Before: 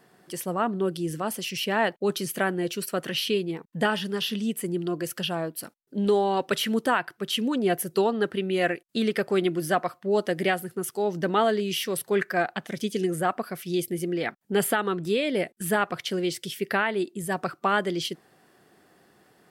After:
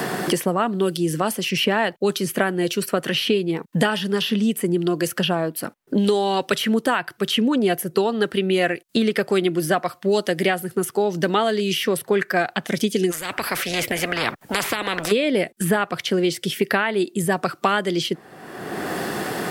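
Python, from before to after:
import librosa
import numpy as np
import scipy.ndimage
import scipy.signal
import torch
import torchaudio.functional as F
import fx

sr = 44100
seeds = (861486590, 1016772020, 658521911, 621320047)

y = fx.spectral_comp(x, sr, ratio=10.0, at=(13.1, 15.11), fade=0.02)
y = fx.band_squash(y, sr, depth_pct=100)
y = y * 10.0 ** (4.5 / 20.0)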